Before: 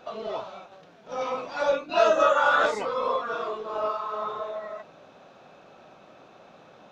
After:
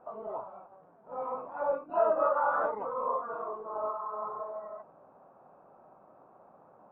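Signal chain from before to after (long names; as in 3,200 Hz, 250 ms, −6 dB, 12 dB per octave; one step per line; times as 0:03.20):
transistor ladder low-pass 1,200 Hz, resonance 45%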